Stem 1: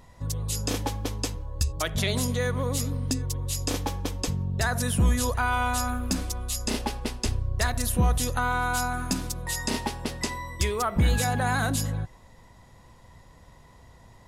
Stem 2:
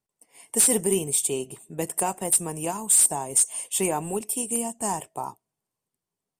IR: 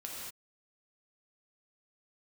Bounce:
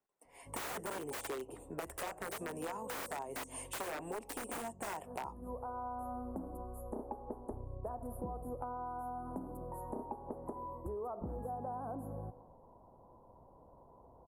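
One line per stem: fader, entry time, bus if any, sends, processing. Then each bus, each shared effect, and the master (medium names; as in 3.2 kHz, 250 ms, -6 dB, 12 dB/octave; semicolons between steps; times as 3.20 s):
-1.0 dB, 0.25 s, send -13.5 dB, inverse Chebyshev band-stop 2.4–5 kHz, stop band 70 dB; treble shelf 11 kHz -11 dB; auto duck -14 dB, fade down 0.30 s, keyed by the second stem
+2.0 dB, 0.00 s, no send, integer overflow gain 21 dB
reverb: on, pre-delay 3 ms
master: three-band isolator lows -14 dB, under 280 Hz, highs -14 dB, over 2 kHz; compression, threshold -39 dBFS, peak gain reduction 12.5 dB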